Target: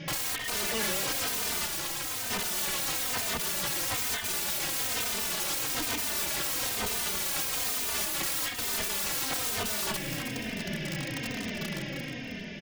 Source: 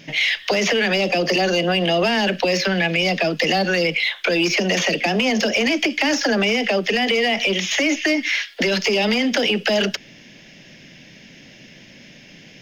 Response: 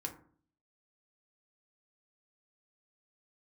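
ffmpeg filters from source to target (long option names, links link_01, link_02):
-filter_complex "[0:a]aemphasis=mode=reproduction:type=75fm,acompressor=threshold=-22dB:ratio=12,asoftclip=type=hard:threshold=-24dB,dynaudnorm=framelen=190:gausssize=9:maxgain=6.5dB,aeval=exprs='(mod(31.6*val(0)+1,2)-1)/31.6':channel_layout=same,asettb=1/sr,asplit=3[link_01][link_02][link_03];[link_01]atrim=end=1.664[link_04];[link_02]atrim=start=1.66:end=2.3,asetpts=PTS-STARTPTS,afade=type=in:duration=0.004:curve=qsin,afade=type=out:start_time=0.636:duration=0.004:curve=qsin,aeval=exprs='val(0)*sin(2*PI*330*n/s)':channel_layout=same[link_05];[link_03]atrim=start=2.296[link_06];[link_04][link_05]acrossfade=duration=0.004:curve1=hsin:curve2=qsin[link_07];[link_07][link_06]acrossfade=duration=0.004:curve1=qsin:curve2=hsin,aecho=1:1:313|626|939:0.376|0.105|0.0295,asplit=2[link_08][link_09];[link_09]adelay=3.1,afreqshift=-1.1[link_10];[link_08][link_10]amix=inputs=2:normalize=1,volume=7dB"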